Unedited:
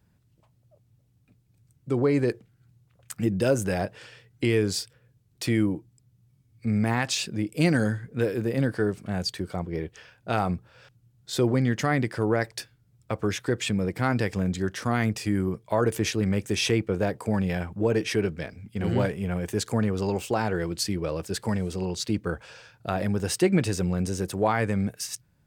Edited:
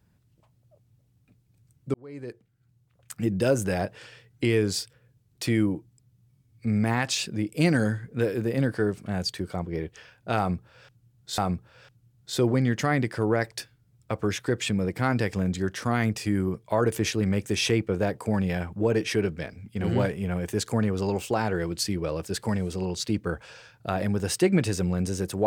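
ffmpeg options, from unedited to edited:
ffmpeg -i in.wav -filter_complex "[0:a]asplit=3[link_01][link_02][link_03];[link_01]atrim=end=1.94,asetpts=PTS-STARTPTS,afade=type=out:start_time=1.936:duration=0.004:curve=hsin[link_04];[link_02]atrim=start=1.94:end=11.382,asetpts=PTS-STARTPTS,afade=type=in:duration=1.49[link_05];[link_03]atrim=start=10.378[link_06];[link_04][link_05]concat=n=2:v=0:a=1[link_07];[link_07][link_06]acrossfade=duration=0.004:curve1=hsin:curve2=hsin" out.wav

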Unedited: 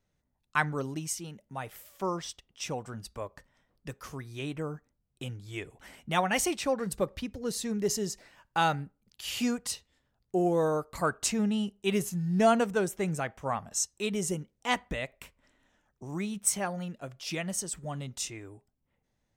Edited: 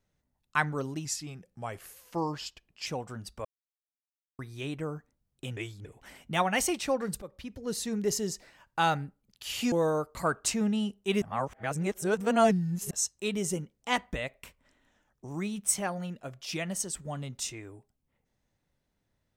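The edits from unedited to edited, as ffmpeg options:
ffmpeg -i in.wav -filter_complex "[0:a]asplit=11[link_01][link_02][link_03][link_04][link_05][link_06][link_07][link_08][link_09][link_10][link_11];[link_01]atrim=end=1.054[link_12];[link_02]atrim=start=1.05:end=2.65,asetpts=PTS-STARTPTS,asetrate=38808,aresample=44100[link_13];[link_03]atrim=start=2.646:end=3.23,asetpts=PTS-STARTPTS,afade=type=out:start_time=0.58:duration=0.004:curve=hsin[link_14];[link_04]atrim=start=3.23:end=4.17,asetpts=PTS-STARTPTS,volume=0[link_15];[link_05]atrim=start=4.17:end=5.352,asetpts=PTS-STARTPTS,afade=type=in:duration=0.004:curve=hsin[link_16];[link_06]atrim=start=5.348:end=5.632,asetpts=PTS-STARTPTS,areverse[link_17];[link_07]atrim=start=5.628:end=7,asetpts=PTS-STARTPTS,afade=type=out:start_time=1.368:duration=0.004:curve=hsin:silence=0.141254[link_18];[link_08]atrim=start=7:end=9.502,asetpts=PTS-STARTPTS,afade=type=in:duration=0.52:silence=0.141254[link_19];[link_09]atrim=start=10.498:end=12.002[link_20];[link_10]atrim=start=11.998:end=13.692,asetpts=PTS-STARTPTS,areverse[link_21];[link_11]atrim=start=13.688[link_22];[link_12][link_13]acrossfade=duration=0.004:curve1=hsin:curve2=hsin[link_23];[link_14][link_15][link_16]concat=n=3:v=0:a=1[link_24];[link_23][link_24]acrossfade=duration=0.004:curve1=hsin:curve2=hsin[link_25];[link_25][link_17]acrossfade=duration=0.004:curve1=hsin:curve2=hsin[link_26];[link_18][link_19]concat=n=2:v=0:a=1[link_27];[link_26][link_27]acrossfade=duration=0.004:curve1=hsin:curve2=hsin[link_28];[link_28][link_20]acrossfade=duration=0.004:curve1=hsin:curve2=hsin[link_29];[link_29][link_21]acrossfade=duration=0.004:curve1=hsin:curve2=hsin[link_30];[link_30][link_22]acrossfade=duration=0.004:curve1=hsin:curve2=hsin" out.wav

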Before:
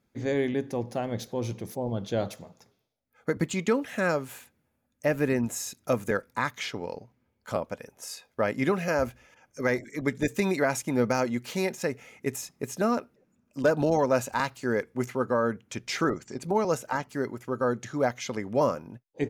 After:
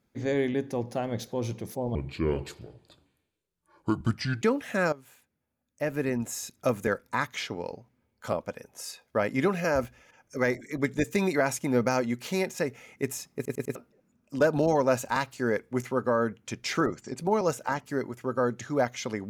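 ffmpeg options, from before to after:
ffmpeg -i in.wav -filter_complex "[0:a]asplit=8[link_01][link_02][link_03][link_04][link_05][link_06][link_07][link_08];[link_01]atrim=end=1.954[link_09];[link_02]atrim=start=1.95:end=3.65,asetpts=PTS-STARTPTS,asetrate=30429,aresample=44100,atrim=end_sample=108652,asetpts=PTS-STARTPTS[link_10];[link_03]atrim=start=3.646:end=4.16,asetpts=PTS-STARTPTS,afade=type=out:start_time=0.51:duration=0.004:curve=hsin:silence=0.16788[link_11];[link_04]atrim=start=4.16:end=12.692,asetpts=PTS-STARTPTS,afade=type=in:duration=1.79:silence=0.16788[link_12];[link_05]atrim=start=12.588:end=12.692[link_13];[link_06]atrim=start=12.588:end=12.692[link_14];[link_07]atrim=start=12.588:end=12.692[link_15];[link_08]atrim=start=12.988[link_16];[link_09][link_10]acrossfade=duration=0.004:curve1=hsin:curve2=hsin[link_17];[link_11][link_12]concat=n=2:v=0:a=1[link_18];[link_17][link_18]acrossfade=duration=0.004:curve1=hsin:curve2=hsin[link_19];[link_19][link_13]acrossfade=duration=0.004:curve1=hsin:curve2=hsin[link_20];[link_20][link_14]acrossfade=duration=0.004:curve1=hsin:curve2=hsin[link_21];[link_21][link_15]acrossfade=duration=0.004:curve1=hsin:curve2=hsin[link_22];[link_22][link_16]acrossfade=duration=0.004:curve1=hsin:curve2=hsin" out.wav

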